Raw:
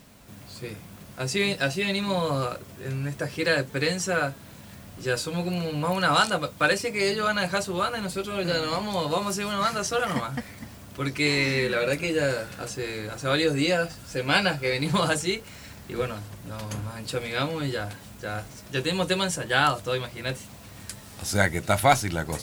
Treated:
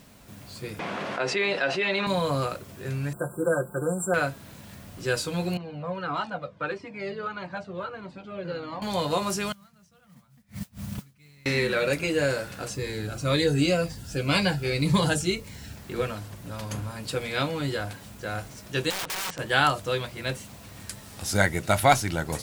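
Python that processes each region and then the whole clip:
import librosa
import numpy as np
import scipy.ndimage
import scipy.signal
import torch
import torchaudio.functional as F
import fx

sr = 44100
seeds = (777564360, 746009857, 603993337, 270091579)

y = fx.chain(x, sr, fx.bandpass_edges(low_hz=410.0, high_hz=2500.0),
    fx.env_flatten(amount_pct=70), at=(0.79, 2.07))
y = fx.chain(y, sr, fx.brickwall_bandstop(low_hz=1600.0, high_hz=7300.0),
    fx.low_shelf(hz=230.0, db=-6.0),
    fx.comb(ms=5.7, depth=0.67), at=(3.13, 4.14))
y = fx.chain(y, sr, fx.highpass(hz=140.0, slope=12),
    fx.spacing_loss(db_at_10k=34),
    fx.comb_cascade(direction='falling', hz=1.6), at=(5.57, 8.82))
y = fx.chain(y, sr, fx.gate_flip(shuts_db=-31.0, range_db=-35),
    fx.low_shelf_res(hz=250.0, db=8.5, q=3.0),
    fx.mod_noise(seeds[0], snr_db=14), at=(9.52, 11.46))
y = fx.chain(y, sr, fx.low_shelf(hz=190.0, db=7.0),
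    fx.notch_cascade(direction='falling', hz=1.9), at=(12.75, 15.76))
y = fx.chain(y, sr, fx.lowpass(hz=2900.0, slope=12),
    fx.overflow_wrap(gain_db=25.0),
    fx.low_shelf(hz=460.0, db=-10.0), at=(18.9, 19.39))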